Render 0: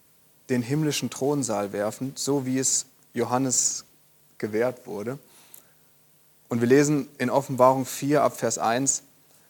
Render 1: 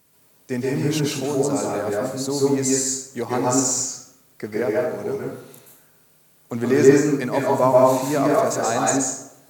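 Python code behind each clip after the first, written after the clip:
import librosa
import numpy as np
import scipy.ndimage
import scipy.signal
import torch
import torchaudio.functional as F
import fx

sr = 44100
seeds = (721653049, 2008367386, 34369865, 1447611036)

y = fx.rev_plate(x, sr, seeds[0], rt60_s=0.82, hf_ratio=0.6, predelay_ms=115, drr_db=-3.5)
y = y * 10.0 ** (-1.5 / 20.0)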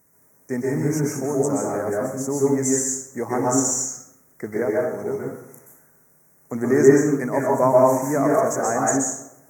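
y = scipy.signal.sosfilt(scipy.signal.ellip(3, 1.0, 70, [2000.0, 5900.0], 'bandstop', fs=sr, output='sos'), x)
y = fx.hum_notches(y, sr, base_hz=60, count=2)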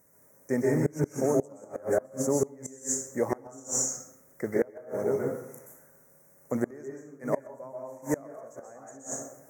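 y = fx.peak_eq(x, sr, hz=550.0, db=10.5, octaves=0.28)
y = fx.gate_flip(y, sr, shuts_db=-11.0, range_db=-26)
y = y * 10.0 ** (-2.5 / 20.0)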